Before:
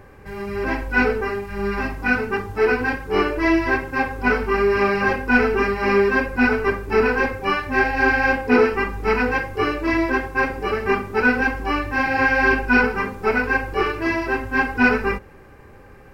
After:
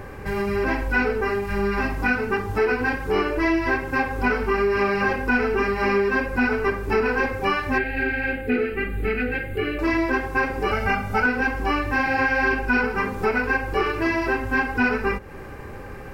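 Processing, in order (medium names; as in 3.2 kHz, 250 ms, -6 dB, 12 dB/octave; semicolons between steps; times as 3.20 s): 10.71–11.26 s: comb 1.4 ms, depth 85%; compression 3:1, threshold -31 dBFS, peak gain reduction 15 dB; 7.78–9.79 s: static phaser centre 2.4 kHz, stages 4; trim +8.5 dB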